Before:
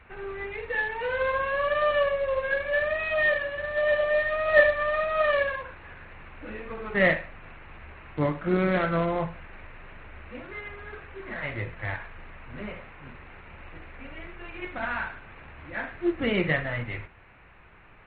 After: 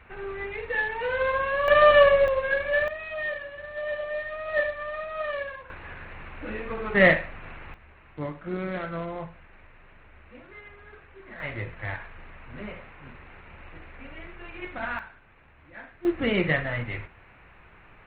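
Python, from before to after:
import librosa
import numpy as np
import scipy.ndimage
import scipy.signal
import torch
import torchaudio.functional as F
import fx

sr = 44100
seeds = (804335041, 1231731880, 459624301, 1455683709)

y = fx.gain(x, sr, db=fx.steps((0.0, 1.0), (1.68, 8.0), (2.28, 1.5), (2.88, -7.5), (5.7, 4.0), (7.74, -7.5), (11.4, -1.0), (14.99, -10.5), (16.05, 1.0)))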